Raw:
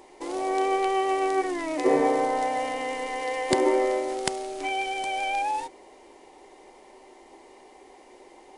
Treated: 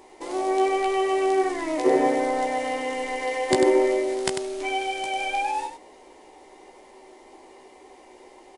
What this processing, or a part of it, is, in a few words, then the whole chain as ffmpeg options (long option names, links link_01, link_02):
slapback doubling: -filter_complex "[0:a]asplit=3[link_01][link_02][link_03];[link_02]adelay=16,volume=-5.5dB[link_04];[link_03]adelay=97,volume=-6.5dB[link_05];[link_01][link_04][link_05]amix=inputs=3:normalize=0"